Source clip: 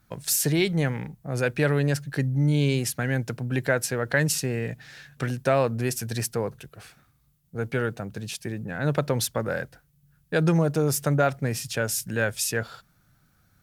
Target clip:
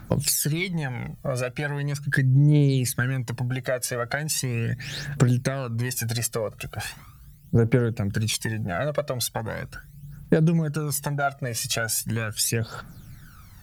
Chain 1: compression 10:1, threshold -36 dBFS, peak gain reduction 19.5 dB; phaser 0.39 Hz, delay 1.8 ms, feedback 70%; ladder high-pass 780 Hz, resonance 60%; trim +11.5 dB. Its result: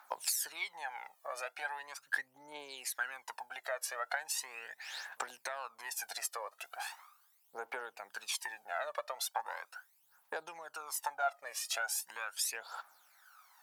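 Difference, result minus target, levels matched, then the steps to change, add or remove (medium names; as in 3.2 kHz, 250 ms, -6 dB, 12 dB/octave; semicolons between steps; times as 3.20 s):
1 kHz band +9.0 dB
remove: ladder high-pass 780 Hz, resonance 60%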